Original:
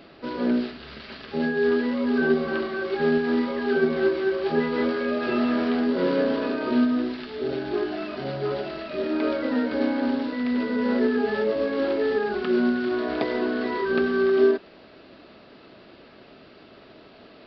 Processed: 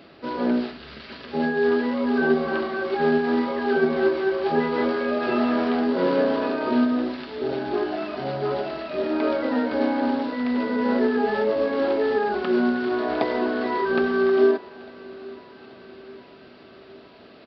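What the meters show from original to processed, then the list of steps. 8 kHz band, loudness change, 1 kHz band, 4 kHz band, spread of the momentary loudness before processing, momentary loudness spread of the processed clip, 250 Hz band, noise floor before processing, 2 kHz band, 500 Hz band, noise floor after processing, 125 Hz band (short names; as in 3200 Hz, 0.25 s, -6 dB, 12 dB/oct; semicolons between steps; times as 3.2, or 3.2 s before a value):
n/a, +1.0 dB, +5.5 dB, 0.0 dB, 8 LU, 9 LU, +0.5 dB, -50 dBFS, +1.0 dB, +1.5 dB, -48 dBFS, 0.0 dB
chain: HPF 44 Hz; dynamic EQ 830 Hz, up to +7 dB, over -43 dBFS, Q 1.6; feedback echo 0.833 s, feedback 57%, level -21.5 dB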